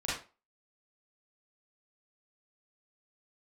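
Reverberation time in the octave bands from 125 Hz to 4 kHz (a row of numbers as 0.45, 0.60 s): 0.30, 0.30, 0.35, 0.30, 0.30, 0.25 s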